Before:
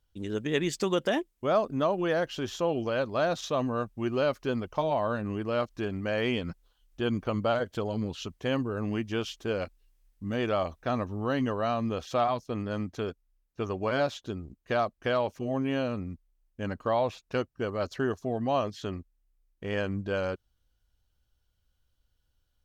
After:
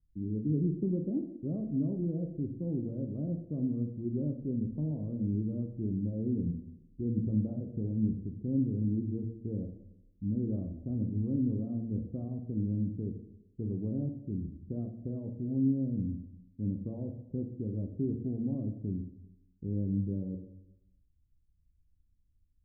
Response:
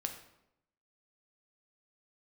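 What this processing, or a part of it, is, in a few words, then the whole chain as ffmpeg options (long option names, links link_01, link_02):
next room: -filter_complex "[0:a]lowpass=frequency=280:width=0.5412,lowpass=frequency=280:width=1.3066[link_01];[1:a]atrim=start_sample=2205[link_02];[link_01][link_02]afir=irnorm=-1:irlink=0,volume=3dB"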